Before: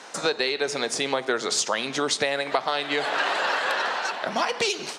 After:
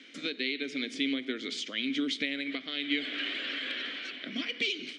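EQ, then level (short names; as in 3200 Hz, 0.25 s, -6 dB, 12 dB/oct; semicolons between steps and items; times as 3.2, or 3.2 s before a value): vowel filter i; bell 3400 Hz +4 dB 0.79 oct; +5.5 dB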